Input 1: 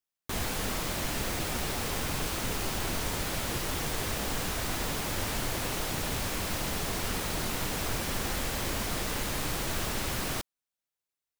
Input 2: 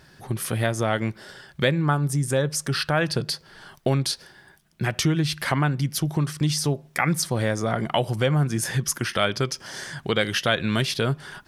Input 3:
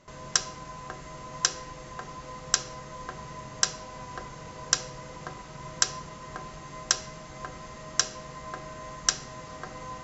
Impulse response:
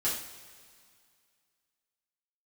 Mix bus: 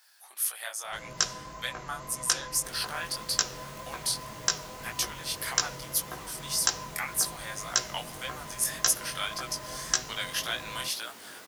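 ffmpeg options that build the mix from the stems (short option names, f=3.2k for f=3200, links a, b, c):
-filter_complex "[0:a]highpass=260,adelay=2350,volume=-11.5dB[a];[1:a]highpass=f=750:w=0.5412,highpass=f=750:w=1.3066,aemphasis=mode=production:type=75fm,volume=-8dB[b];[2:a]adelay=850,volume=1.5dB[c];[a][b][c]amix=inputs=3:normalize=0,flanger=delay=16:depth=7.6:speed=1.8"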